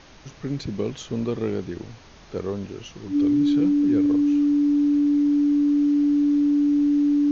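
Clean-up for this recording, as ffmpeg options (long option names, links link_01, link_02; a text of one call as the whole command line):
ffmpeg -i in.wav -af "bandreject=frequency=290:width=30,agate=range=-21dB:threshold=-37dB" out.wav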